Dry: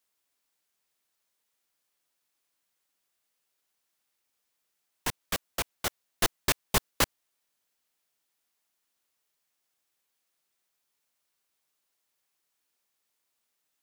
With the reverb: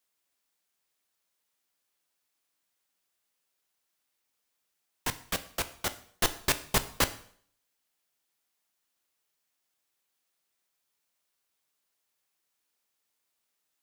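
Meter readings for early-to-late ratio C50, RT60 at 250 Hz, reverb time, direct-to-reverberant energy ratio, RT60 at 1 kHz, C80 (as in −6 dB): 15.5 dB, 0.55 s, 0.55 s, 11.0 dB, 0.55 s, 19.0 dB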